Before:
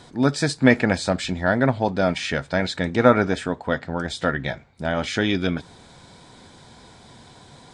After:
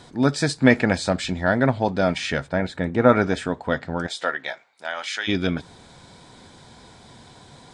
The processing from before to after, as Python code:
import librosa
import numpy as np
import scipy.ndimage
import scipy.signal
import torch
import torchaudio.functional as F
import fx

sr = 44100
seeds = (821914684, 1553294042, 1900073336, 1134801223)

y = fx.peak_eq(x, sr, hz=5200.0, db=-12.0, octaves=2.0, at=(2.47, 3.08), fade=0.02)
y = fx.highpass(y, sr, hz=fx.line((4.06, 440.0), (5.27, 1300.0)), slope=12, at=(4.06, 5.27), fade=0.02)